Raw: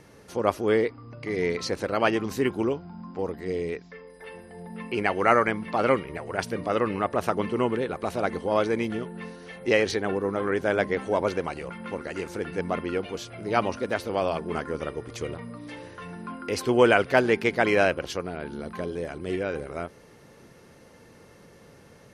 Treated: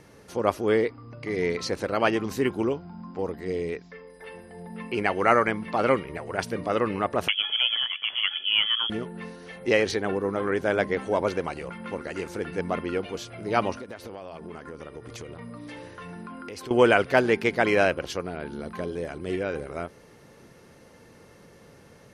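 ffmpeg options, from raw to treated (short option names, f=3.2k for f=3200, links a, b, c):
-filter_complex "[0:a]asettb=1/sr,asplit=3[a][b][c];[a]atrim=end=7.284[d];[b]atrim=start=7.28:end=8.9,asetpts=PTS-STARTPTS,afade=t=in:d=0.004:c=qsin,afade=t=out:st=1.616:d=0.004:c=qsin,lowpass=f=3k:t=q:w=0.5098,lowpass=f=3k:t=q:w=0.6013,lowpass=f=3k:t=q:w=0.9,lowpass=f=3k:t=q:w=2.563,afreqshift=-3500[e];[c]atrim=start=8.896[f];[d][e]acrossfade=d=0.004:c1=hsin:c2=qsin[g];[g][f]acrossfade=d=0.004:c1=qsin:c2=hsin,asettb=1/sr,asplit=3[h][i][j];[h]atrim=end=13.724[k];[i]atrim=start=13.72:end=16.71,asetpts=PTS-STARTPTS,afade=t=in:d=0.004:c=qsin,afade=t=out:st=2.986:d=0.004:c=qsin,acompressor=threshold=-35dB:ratio=8:attack=3.2:release=140:knee=1:detection=peak[l];[j]atrim=start=16.706[m];[k][l]acrossfade=d=0.004:c1=hsin:c2=qsin[n];[n][m]acrossfade=d=0.004:c1=qsin:c2=hsin"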